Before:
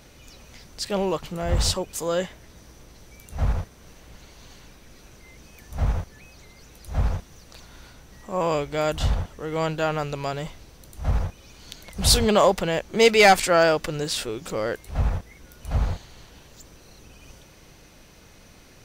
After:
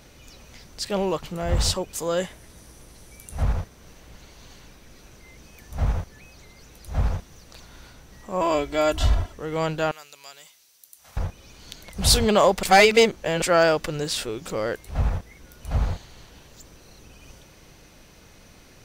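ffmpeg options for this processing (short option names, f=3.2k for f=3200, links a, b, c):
-filter_complex "[0:a]asettb=1/sr,asplit=3[a][b][c];[a]atrim=end=2.174[d];[b]atrim=start=2.17:end=3.43,asetpts=PTS-STARTPTS,afade=t=in:d=0.004:c=qsin,afade=t=out:st=1.256:d=0.004:c=qsin,equalizer=f=10k:t=o:w=0.55:g=11[e];[c]atrim=start=3.426[f];[d][e]acrossfade=d=0.004:c1=hsin:c2=qsin[g];[g][f]acrossfade=d=0.004:c1=qsin:c2=hsin,asettb=1/sr,asplit=3[h][i][j];[h]atrim=end=8.414[k];[i]atrim=start=8.41:end=9.32,asetpts=PTS-STARTPTS,afade=t=in:d=0.004:c=qsin,afade=t=out:st=0.906:d=0.004:c=qsin,aecho=1:1:3:0.74,atrim=end_sample=40131[l];[j]atrim=start=9.316[m];[k][l]acrossfade=d=0.004:c1=hsin:c2=qsin[n];[n][m]acrossfade=d=0.004:c1=qsin:c2=hsin,asettb=1/sr,asplit=3[o][p][q];[o]atrim=end=9.914[r];[p]atrim=start=9.91:end=11.17,asetpts=PTS-STARTPTS,afade=t=in:d=0.004:c=qsin,afade=t=out:st=1.256:d=0.004:c=qsin,aderivative[s];[q]atrim=start=11.166[t];[r][s]acrossfade=d=0.004:c1=hsin:c2=qsin[u];[u][t]acrossfade=d=0.004:c1=qsin:c2=hsin,asplit=3[v][w][x];[v]atrim=end=12.632[y];[w]atrim=start=12.628:end=13.422,asetpts=PTS-STARTPTS,areverse[z];[x]atrim=start=13.418[aa];[y][z]acrossfade=d=0.004:c1=hsin:c2=hsin[ab];[ab][aa]acrossfade=d=0.004:c1=hsin:c2=hsin"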